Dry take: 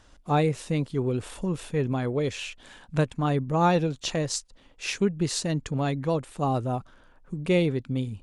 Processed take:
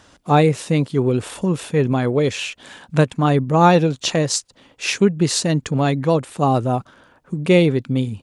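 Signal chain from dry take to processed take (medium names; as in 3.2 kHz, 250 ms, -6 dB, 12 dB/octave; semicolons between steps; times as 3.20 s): high-pass 99 Hz 12 dB/octave; trim +9 dB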